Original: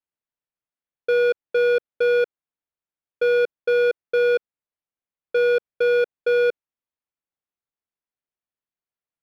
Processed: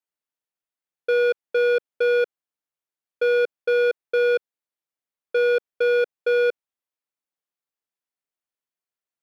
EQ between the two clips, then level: low shelf 140 Hz -12 dB; 0.0 dB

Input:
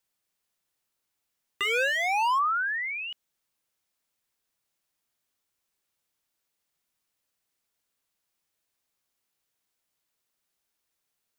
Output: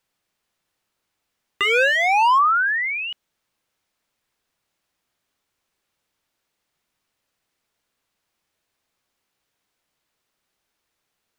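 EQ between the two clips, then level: high shelf 5900 Hz -11 dB; +9.0 dB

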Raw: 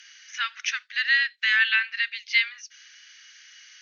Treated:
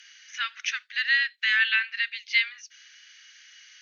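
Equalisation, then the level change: HPF 1200 Hz 6 dB/oct; bell 5400 Hz -3.5 dB 0.56 oct; 0.0 dB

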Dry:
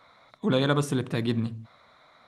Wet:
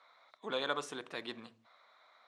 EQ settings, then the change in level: BPF 590–7200 Hz; -6.5 dB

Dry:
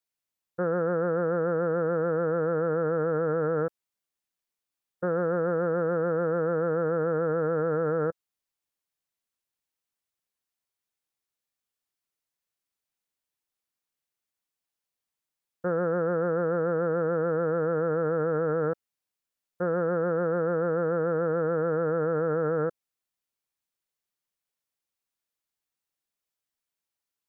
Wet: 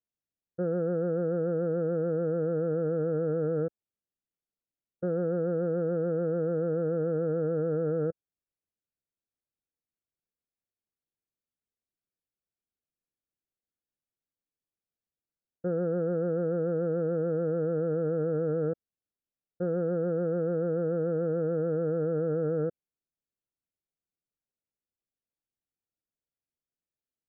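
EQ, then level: running mean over 43 samples; +1.0 dB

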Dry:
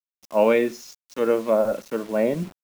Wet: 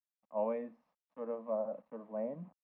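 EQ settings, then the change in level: HPF 73 Hz; ladder low-pass 1400 Hz, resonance 75%; fixed phaser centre 370 Hz, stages 6; -4.5 dB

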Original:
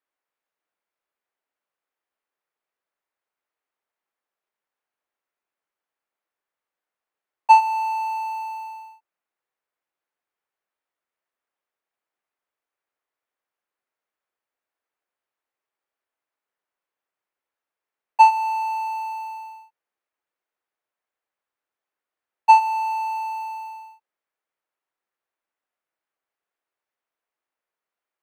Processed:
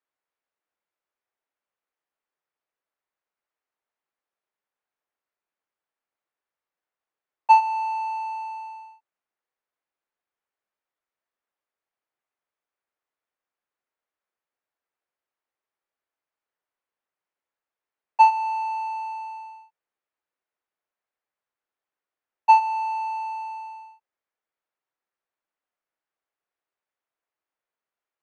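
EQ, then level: air absorption 82 m; -2.0 dB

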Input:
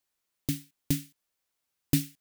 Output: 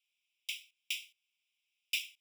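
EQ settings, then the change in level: polynomial smoothing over 25 samples; steep high-pass 2300 Hz 96 dB/oct; +11.5 dB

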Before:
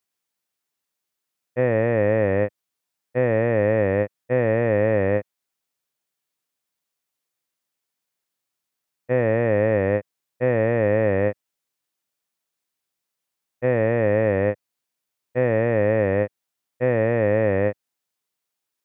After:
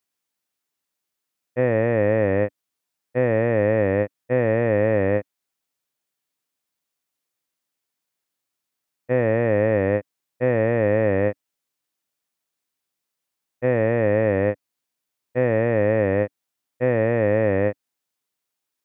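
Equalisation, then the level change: bell 280 Hz +3.5 dB 0.28 oct; 0.0 dB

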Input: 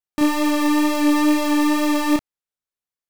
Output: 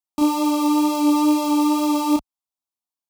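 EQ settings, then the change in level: HPF 41 Hz; bell 1000 Hz +3.5 dB 0.79 oct; fixed phaser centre 470 Hz, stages 6; 0.0 dB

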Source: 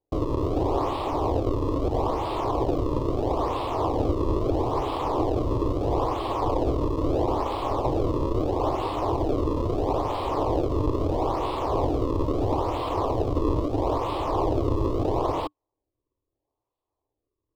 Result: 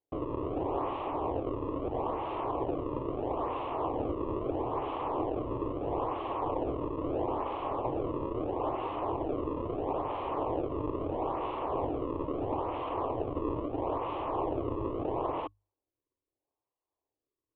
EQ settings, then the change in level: elliptic low-pass 2900 Hz, stop band 70 dB; low shelf 100 Hz -10 dB; notches 50/100 Hz; -6.0 dB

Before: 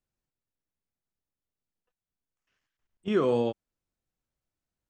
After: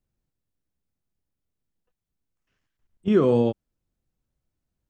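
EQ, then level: low shelf 410 Hz +11 dB; 0.0 dB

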